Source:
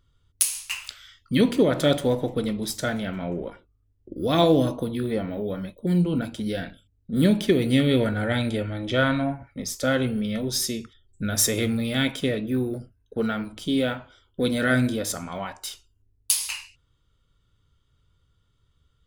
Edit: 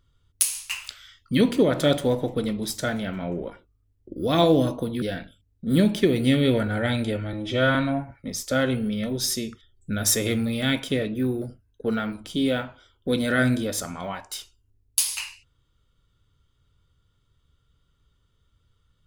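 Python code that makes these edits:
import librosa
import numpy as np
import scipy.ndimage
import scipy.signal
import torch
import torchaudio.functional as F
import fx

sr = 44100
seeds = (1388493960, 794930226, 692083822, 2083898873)

y = fx.edit(x, sr, fx.cut(start_s=5.02, length_s=1.46),
    fx.stretch_span(start_s=8.79, length_s=0.28, factor=1.5), tone=tone)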